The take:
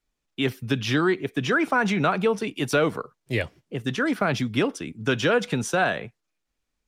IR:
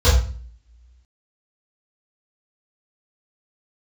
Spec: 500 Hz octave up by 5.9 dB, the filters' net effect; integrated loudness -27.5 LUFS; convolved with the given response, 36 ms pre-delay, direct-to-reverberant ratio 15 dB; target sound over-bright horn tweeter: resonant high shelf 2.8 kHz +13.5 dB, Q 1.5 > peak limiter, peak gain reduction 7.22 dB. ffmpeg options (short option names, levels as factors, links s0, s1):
-filter_complex "[0:a]equalizer=f=500:t=o:g=7.5,asplit=2[s0][s1];[1:a]atrim=start_sample=2205,adelay=36[s2];[s1][s2]afir=irnorm=-1:irlink=0,volume=0.0158[s3];[s0][s3]amix=inputs=2:normalize=0,highshelf=f=2800:t=q:w=1.5:g=13.5,volume=0.501,alimiter=limit=0.15:level=0:latency=1"